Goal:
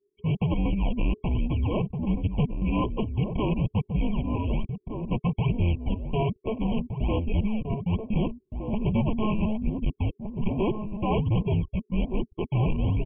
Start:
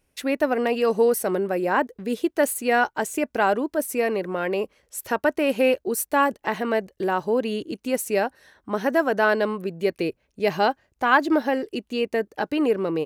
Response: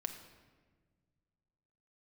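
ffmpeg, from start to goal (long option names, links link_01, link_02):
-filter_complex "[0:a]lowpass=frequency=1300:poles=1,asplit=2[link_01][link_02];[link_02]acrusher=samples=25:mix=1:aa=0.000001:lfo=1:lforange=25:lforate=1.2,volume=-3dB[link_03];[link_01][link_03]amix=inputs=2:normalize=0,anlmdn=10,afreqshift=-430,aresample=8000,asoftclip=type=tanh:threshold=-20dB,aresample=44100,asplit=2[link_04][link_05];[link_05]adelay=1516,volume=-7dB,highshelf=frequency=4000:gain=-34.1[link_06];[link_04][link_06]amix=inputs=2:normalize=0,afftfilt=real='re*eq(mod(floor(b*sr/1024/1100),2),0)':imag='im*eq(mod(floor(b*sr/1024/1100),2),0)':win_size=1024:overlap=0.75"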